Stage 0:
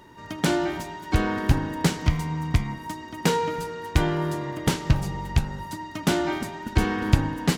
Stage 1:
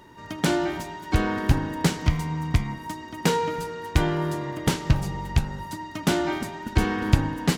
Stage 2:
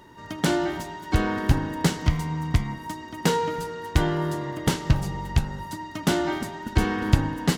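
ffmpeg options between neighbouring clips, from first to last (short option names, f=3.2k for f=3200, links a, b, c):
-af anull
-af "bandreject=f=2.4k:w=15"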